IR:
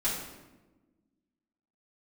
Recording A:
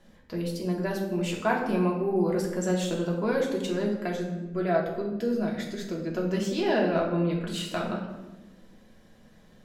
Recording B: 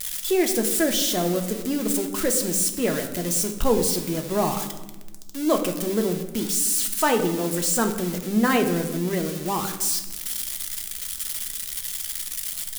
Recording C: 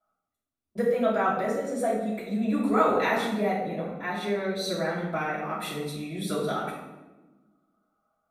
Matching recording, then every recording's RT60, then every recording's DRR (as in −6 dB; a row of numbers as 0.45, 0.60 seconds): C; 1.2, 1.2, 1.2 seconds; −2.0, 4.5, −10.5 decibels